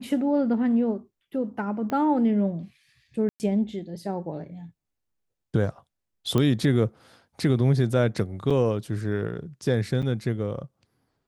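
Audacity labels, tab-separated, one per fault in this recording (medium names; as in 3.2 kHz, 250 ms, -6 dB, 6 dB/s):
1.900000	1.900000	pop -18 dBFS
3.290000	3.400000	dropout 109 ms
6.380000	6.380000	pop -12 dBFS
8.500000	8.510000	dropout 5.5 ms
10.020000	10.030000	dropout 7.3 ms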